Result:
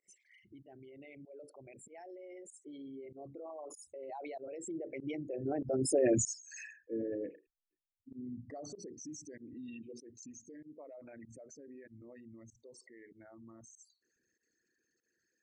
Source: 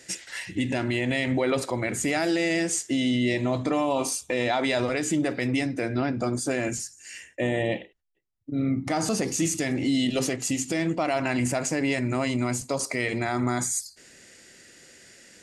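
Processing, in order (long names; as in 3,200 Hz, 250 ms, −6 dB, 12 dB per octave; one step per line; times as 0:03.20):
spectral envelope exaggerated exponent 3
source passing by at 0:06.14, 29 m/s, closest 6.2 metres
fake sidechain pumping 96 BPM, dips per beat 1, −24 dB, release 88 ms
level +1 dB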